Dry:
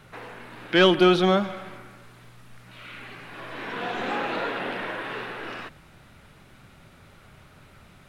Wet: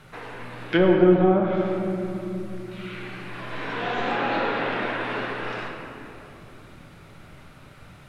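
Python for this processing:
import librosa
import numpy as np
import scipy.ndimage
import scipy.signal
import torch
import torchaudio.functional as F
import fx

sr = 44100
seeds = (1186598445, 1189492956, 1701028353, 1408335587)

y = fx.env_lowpass_down(x, sr, base_hz=680.0, full_db=-15.0)
y = fx.room_shoebox(y, sr, seeds[0], volume_m3=170.0, walls='hard', distance_m=0.4)
y = y * 10.0 ** (1.0 / 20.0)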